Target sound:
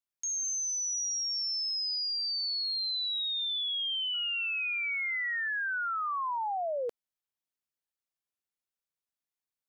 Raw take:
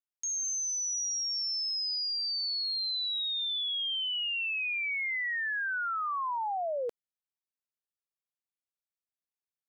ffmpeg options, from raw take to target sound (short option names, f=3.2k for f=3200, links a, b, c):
-filter_complex "[0:a]asettb=1/sr,asplit=3[a][b][c];[a]atrim=end=4.144[d];[b]atrim=start=4.14:end=5.48,asetpts=PTS-STARTPTS,afade=t=in:d=0.004:c=qsin,afade=t=out:st=1.336:d=0.004:c=qsin,aeval=exprs='val(0)+0.00224*sin(2*PI*1400*n/s)':c=same[e];[c]atrim=start=5.476[f];[d][e]acrossfade=d=0.004:c1=hsin:c2=qsin[g];[g][f]acrossfade=d=0.004:c1=qsin:c2=hsin"